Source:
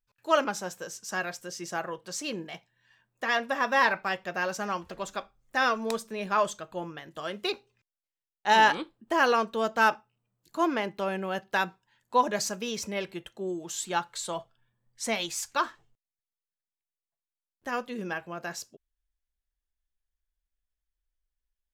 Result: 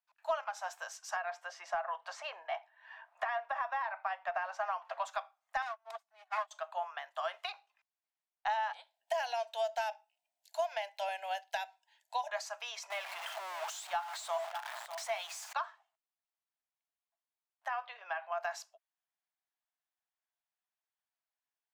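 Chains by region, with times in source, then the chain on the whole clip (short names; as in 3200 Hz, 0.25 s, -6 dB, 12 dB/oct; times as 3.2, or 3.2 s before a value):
1.16–5.05 LPF 1600 Hz 6 dB/oct + three-band squash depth 70%
5.62–6.51 minimum comb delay 2.7 ms + upward expander 2.5:1, over -42 dBFS
8.73–12.29 high shelf 3500 Hz +10 dB + fixed phaser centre 320 Hz, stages 6
12.9–15.53 zero-crossing step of -31.5 dBFS + high shelf 11000 Hz +6 dB + echo 0.597 s -18 dB
17.68–18.32 compressor 2:1, threshold -34 dBFS + LPF 4300 Hz 24 dB/oct + doubler 15 ms -13 dB
whole clip: Chebyshev high-pass 660 Hz, order 6; compressor 12:1, threshold -36 dBFS; tilt -4 dB/oct; gain +4.5 dB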